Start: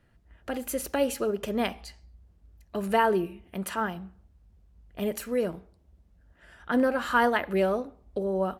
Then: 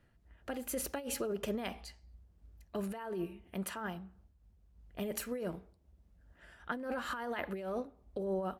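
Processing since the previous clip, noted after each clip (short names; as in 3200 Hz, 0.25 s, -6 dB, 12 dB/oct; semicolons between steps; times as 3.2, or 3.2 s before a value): negative-ratio compressor -29 dBFS, ratio -1; noise-modulated level, depth 65%; gain -4.5 dB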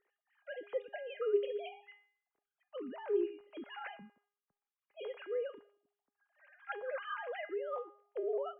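sine-wave speech; resonator 410 Hz, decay 0.53 s, mix 80%; gain +11 dB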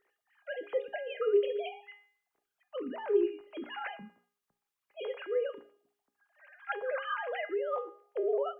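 notches 60/120/180/240/300/360/420/480/540 Hz; gain +6 dB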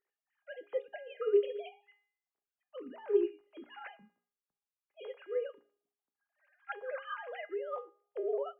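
upward expander 1.5:1, over -51 dBFS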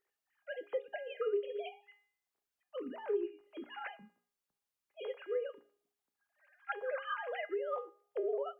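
compressor 4:1, threshold -36 dBFS, peak gain reduction 12.5 dB; gain +3.5 dB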